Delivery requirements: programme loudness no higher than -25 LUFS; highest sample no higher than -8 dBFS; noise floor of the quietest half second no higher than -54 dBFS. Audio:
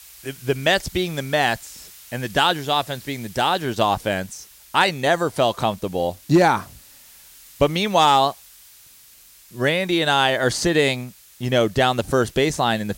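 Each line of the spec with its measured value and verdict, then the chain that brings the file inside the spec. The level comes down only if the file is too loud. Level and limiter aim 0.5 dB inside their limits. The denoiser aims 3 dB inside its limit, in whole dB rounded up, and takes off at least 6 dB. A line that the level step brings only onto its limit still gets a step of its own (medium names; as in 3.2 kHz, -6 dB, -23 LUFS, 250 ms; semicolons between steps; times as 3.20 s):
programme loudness -20.5 LUFS: fail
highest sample -4.5 dBFS: fail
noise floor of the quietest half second -49 dBFS: fail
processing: noise reduction 6 dB, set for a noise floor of -49 dBFS; trim -5 dB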